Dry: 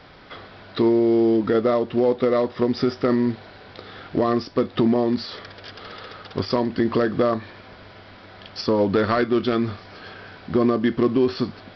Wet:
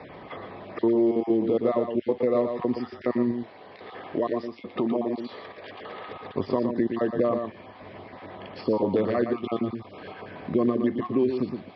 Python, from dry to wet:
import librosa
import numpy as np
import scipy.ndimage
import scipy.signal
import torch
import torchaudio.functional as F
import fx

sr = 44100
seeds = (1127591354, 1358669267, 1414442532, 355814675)

y = fx.spec_dropout(x, sr, seeds[0], share_pct=25)
y = fx.highpass(y, sr, hz=160.0, slope=6)
y = fx.low_shelf(y, sr, hz=230.0, db=-12.0, at=(3.31, 6.06))
y = scipy.signal.sosfilt(scipy.signal.butter(2, 2300.0, 'lowpass', fs=sr, output='sos'), y)
y = fx.peak_eq(y, sr, hz=1500.0, db=-8.5, octaves=0.51)
y = fx.notch(y, sr, hz=1400.0, q=8.2)
y = y + 10.0 ** (-7.0 / 20.0) * np.pad(y, (int(117 * sr / 1000.0), 0))[:len(y)]
y = fx.band_squash(y, sr, depth_pct=40)
y = y * 10.0 ** (-2.5 / 20.0)